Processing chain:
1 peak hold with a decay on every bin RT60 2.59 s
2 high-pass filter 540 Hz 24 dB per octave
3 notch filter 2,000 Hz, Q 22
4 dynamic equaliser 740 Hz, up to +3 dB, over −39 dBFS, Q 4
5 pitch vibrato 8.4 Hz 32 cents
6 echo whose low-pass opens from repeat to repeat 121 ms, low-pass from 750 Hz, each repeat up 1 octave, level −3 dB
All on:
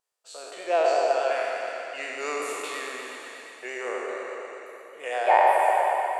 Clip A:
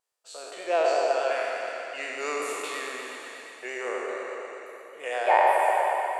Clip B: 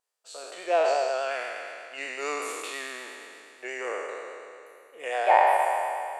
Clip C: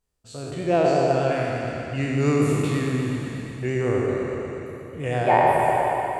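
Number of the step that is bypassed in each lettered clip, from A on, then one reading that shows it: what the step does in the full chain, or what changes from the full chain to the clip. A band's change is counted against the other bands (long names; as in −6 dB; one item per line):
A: 4, 1 kHz band −2.0 dB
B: 6, 250 Hz band −2.0 dB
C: 2, 250 Hz band +19.5 dB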